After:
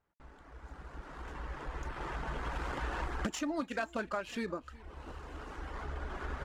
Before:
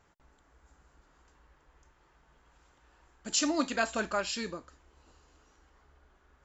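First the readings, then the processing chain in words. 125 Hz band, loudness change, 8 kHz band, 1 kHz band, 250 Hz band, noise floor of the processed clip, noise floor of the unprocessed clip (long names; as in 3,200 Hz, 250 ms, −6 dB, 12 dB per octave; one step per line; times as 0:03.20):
+12.0 dB, −8.5 dB, can't be measured, −0.5 dB, −3.0 dB, −57 dBFS, −67 dBFS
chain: running median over 9 samples
camcorder AGC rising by 11 dB per second
noise gate with hold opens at −55 dBFS
reverb reduction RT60 0.51 s
downward compressor 3 to 1, threshold −43 dBFS, peak gain reduction 14 dB
high-frequency loss of the air 51 metres
single-tap delay 365 ms −22 dB
level +7 dB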